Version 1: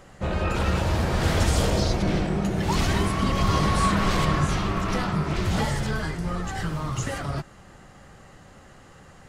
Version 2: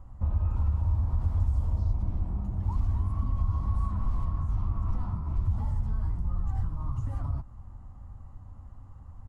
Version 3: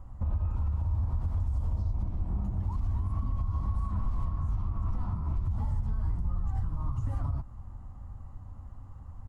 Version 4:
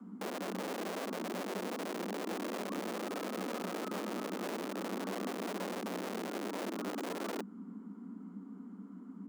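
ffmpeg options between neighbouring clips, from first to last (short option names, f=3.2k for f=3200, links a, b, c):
-af "lowshelf=f=230:g=10.5,acompressor=threshold=-22dB:ratio=6,firequalizer=gain_entry='entry(100,0);entry(150,-17);entry(250,-9);entry(390,-22);entry(1000,-5);entry(1600,-24);entry(3400,-27);entry(11000,-21)':delay=0.05:min_phase=1"
-af "alimiter=limit=-24dB:level=0:latency=1:release=108,volume=1.5dB"
-filter_complex "[0:a]acrossover=split=400[a][b];[a]aeval=exprs='(mod(28.2*val(0)+1,2)-1)/28.2':c=same[c];[c][b]amix=inputs=2:normalize=0,afreqshift=180,volume=-5dB"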